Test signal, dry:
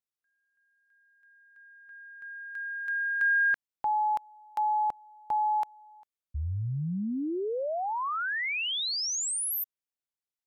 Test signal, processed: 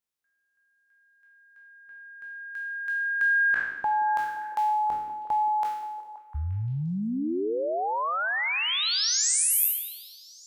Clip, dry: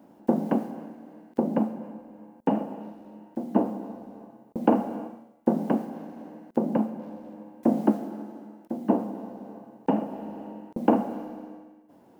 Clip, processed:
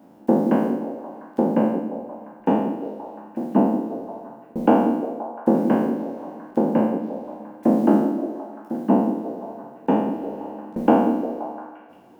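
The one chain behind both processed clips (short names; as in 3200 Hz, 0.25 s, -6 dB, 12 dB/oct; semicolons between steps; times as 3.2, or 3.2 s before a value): spectral trails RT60 0.90 s; delay with a stepping band-pass 0.175 s, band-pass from 290 Hz, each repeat 0.7 oct, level -6 dB; gain +2 dB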